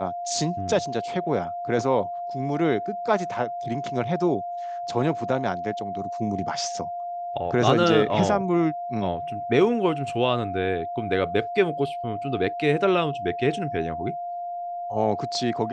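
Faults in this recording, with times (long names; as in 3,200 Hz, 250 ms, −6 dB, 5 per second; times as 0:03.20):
whistle 700 Hz −29 dBFS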